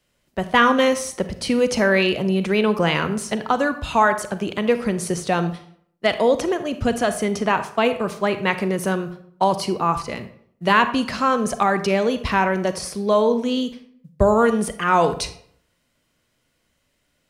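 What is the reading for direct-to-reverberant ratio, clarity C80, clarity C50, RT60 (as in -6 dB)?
10.5 dB, 15.0 dB, 12.0 dB, 0.65 s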